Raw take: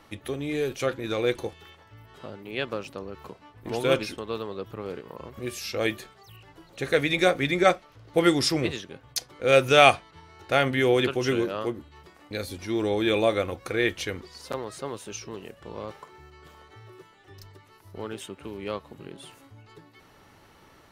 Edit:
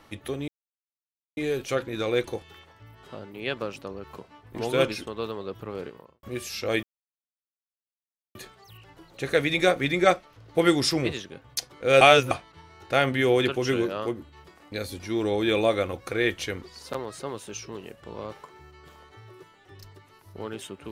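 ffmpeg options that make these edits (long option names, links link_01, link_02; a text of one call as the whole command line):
ffmpeg -i in.wav -filter_complex "[0:a]asplit=6[link_01][link_02][link_03][link_04][link_05][link_06];[link_01]atrim=end=0.48,asetpts=PTS-STARTPTS,afade=type=out:start_time=0.476:duration=0.004:curve=hsin,apad=pad_dur=0.89[link_07];[link_02]atrim=start=0.48:end=5.34,asetpts=PTS-STARTPTS,afade=type=in:duration=0.004:curve=hsin,afade=type=out:start_time=4.53:duration=0.33:curve=qua[link_08];[link_03]atrim=start=5.34:end=5.94,asetpts=PTS-STARTPTS,afade=type=in:duration=0.004:curve=hsin,afade=type=out:start_time=0.596:duration=0.004:curve=hsin,apad=pad_dur=1.52[link_09];[link_04]atrim=start=5.94:end=9.602,asetpts=PTS-STARTPTS,afade=type=in:duration=0.004:curve=hsin[link_10];[link_05]atrim=start=9.598:end=9.902,asetpts=PTS-STARTPTS,areverse[link_11];[link_06]atrim=start=9.898[link_12];[link_07][link_08][link_09][link_10]concat=n=4:v=0:a=1[link_13];[link_13][link_11]acrossfade=duration=0.004:curve1=hsin:curve2=hsin[link_14];[link_14][link_12]acrossfade=duration=0.004:curve1=hsin:curve2=hsin" out.wav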